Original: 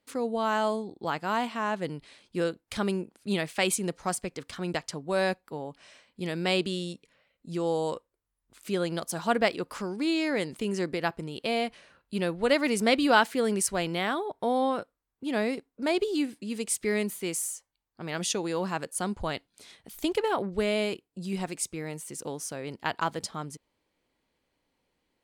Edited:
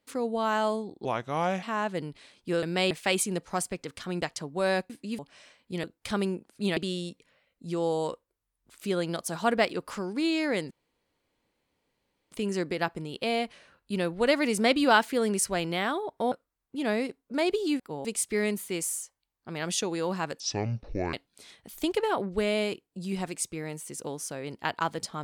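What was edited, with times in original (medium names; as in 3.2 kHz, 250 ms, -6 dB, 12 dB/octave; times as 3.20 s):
1.05–1.50 s: speed 78%
2.50–3.43 s: swap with 6.32–6.60 s
5.42–5.67 s: swap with 16.28–16.57 s
10.54 s: insert room tone 1.61 s
14.54–14.80 s: delete
18.92–19.34 s: speed 57%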